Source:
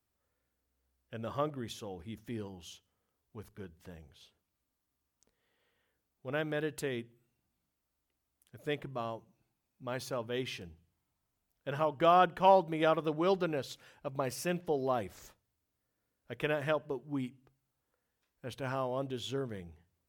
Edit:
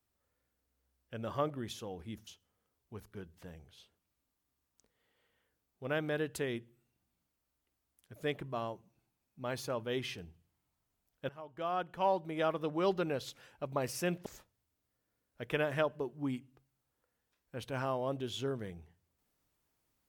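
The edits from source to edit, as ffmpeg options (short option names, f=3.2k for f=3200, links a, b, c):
-filter_complex "[0:a]asplit=4[a][b][c][d];[a]atrim=end=2.272[e];[b]atrim=start=2.698:end=11.72,asetpts=PTS-STARTPTS,afade=t=out:st=9.018:d=0.004:c=hsin:silence=0.0841395[f];[c]atrim=start=11.72:end=14.692,asetpts=PTS-STARTPTS,afade=t=in:d=1.96:silence=0.0841395[g];[d]atrim=start=15.158[h];[f][g]concat=n=2:v=0:a=1[i];[e][i]acrossfade=d=0.004:c1=hsin:c2=hsin[j];[j][h]acrossfade=d=0.004:c1=hsin:c2=hsin"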